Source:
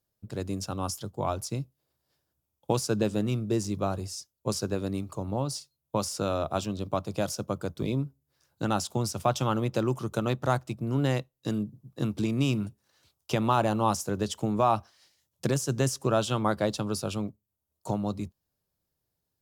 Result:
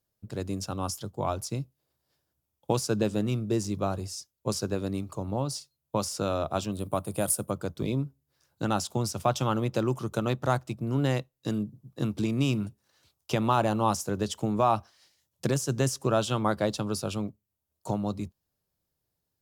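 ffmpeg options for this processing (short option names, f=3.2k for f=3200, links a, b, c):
-filter_complex "[0:a]asettb=1/sr,asplit=3[a][b][c];[a]atrim=end=6.724[d];[b]atrim=start=6.72:end=7.51,asetpts=PTS-STARTPTS,afade=t=in:d=0.004:c=qsin,afade=t=out:st=0.786:d=0.004:c=qsin,highshelf=f=7.5k:t=q:w=3:g=10[e];[c]atrim=start=7.506[f];[d][e]acrossfade=d=0.004:c1=hsin:c2=qsin[g];[g][f]acrossfade=d=0.004:c1=qsin:c2=hsin"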